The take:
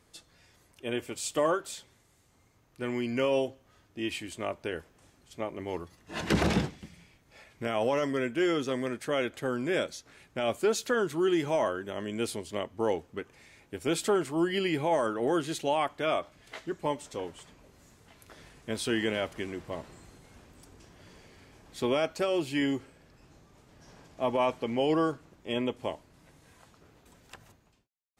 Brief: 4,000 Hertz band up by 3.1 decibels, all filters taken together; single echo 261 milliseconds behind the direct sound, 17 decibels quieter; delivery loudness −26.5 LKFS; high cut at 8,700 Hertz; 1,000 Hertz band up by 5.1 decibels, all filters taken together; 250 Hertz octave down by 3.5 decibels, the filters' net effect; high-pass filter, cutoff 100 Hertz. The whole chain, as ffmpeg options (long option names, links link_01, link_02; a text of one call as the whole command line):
ffmpeg -i in.wav -af "highpass=100,lowpass=8700,equalizer=frequency=250:width_type=o:gain=-5.5,equalizer=frequency=1000:width_type=o:gain=6.5,equalizer=frequency=4000:width_type=o:gain=4,aecho=1:1:261:0.141,volume=3.5dB" out.wav